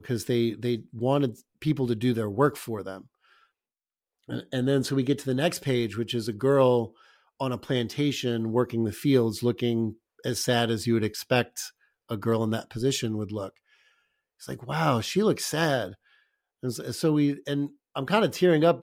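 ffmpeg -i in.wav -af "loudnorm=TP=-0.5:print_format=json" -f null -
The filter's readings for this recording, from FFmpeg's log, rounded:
"input_i" : "-26.6",
"input_tp" : "-9.0",
"input_lra" : "3.2",
"input_thresh" : "-37.3",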